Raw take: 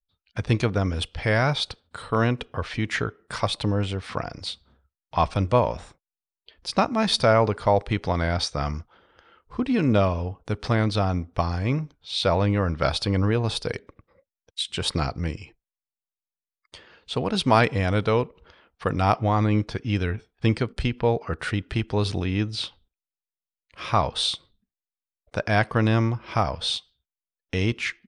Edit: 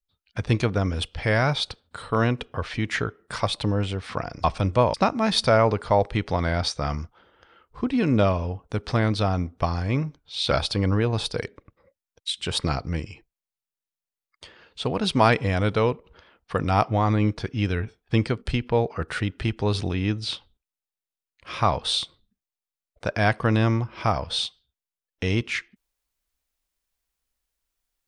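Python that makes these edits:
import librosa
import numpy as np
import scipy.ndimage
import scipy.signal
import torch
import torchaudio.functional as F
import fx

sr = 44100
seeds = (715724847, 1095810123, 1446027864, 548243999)

y = fx.edit(x, sr, fx.cut(start_s=4.44, length_s=0.76),
    fx.cut(start_s=5.7, length_s=1.0),
    fx.cut(start_s=12.27, length_s=0.55), tone=tone)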